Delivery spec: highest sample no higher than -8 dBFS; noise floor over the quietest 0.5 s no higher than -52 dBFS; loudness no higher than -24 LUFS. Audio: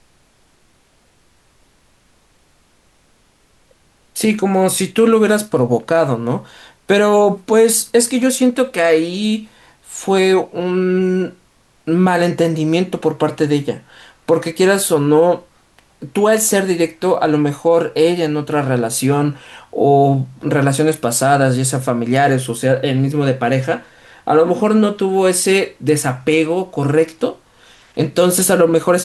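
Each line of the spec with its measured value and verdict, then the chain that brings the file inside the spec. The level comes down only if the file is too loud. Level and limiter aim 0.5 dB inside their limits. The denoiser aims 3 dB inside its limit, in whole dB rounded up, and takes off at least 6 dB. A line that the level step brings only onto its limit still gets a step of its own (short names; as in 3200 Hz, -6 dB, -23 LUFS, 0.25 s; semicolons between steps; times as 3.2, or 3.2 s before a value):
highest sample -2.5 dBFS: fail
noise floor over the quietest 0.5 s -55 dBFS: OK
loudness -15.5 LUFS: fail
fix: gain -9 dB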